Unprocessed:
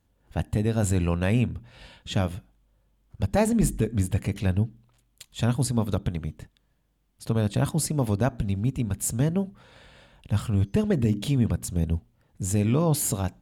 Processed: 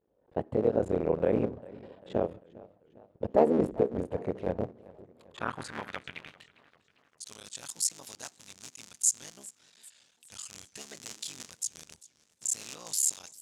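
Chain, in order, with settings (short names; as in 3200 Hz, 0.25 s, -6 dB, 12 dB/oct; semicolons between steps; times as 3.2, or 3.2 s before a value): cycle switcher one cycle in 3, muted; vibrato 0.65 Hz 89 cents; band-pass sweep 480 Hz -> 6600 Hz, 4.46–7.21; warbling echo 0.399 s, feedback 52%, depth 143 cents, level -21 dB; gain +7.5 dB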